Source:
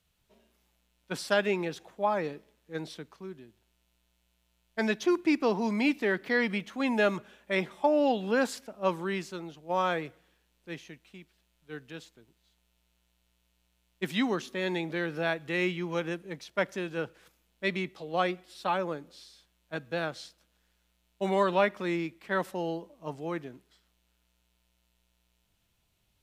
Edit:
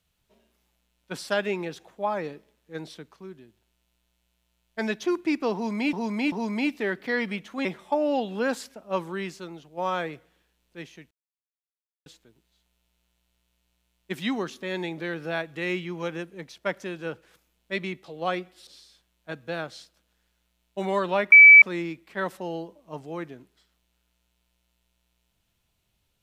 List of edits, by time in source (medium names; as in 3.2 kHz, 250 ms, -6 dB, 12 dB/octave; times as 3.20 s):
5.54–5.93 s: loop, 3 plays
6.87–7.57 s: delete
11.03–11.98 s: mute
18.59–19.11 s: delete
21.76 s: add tone 2.3 kHz -6.5 dBFS 0.30 s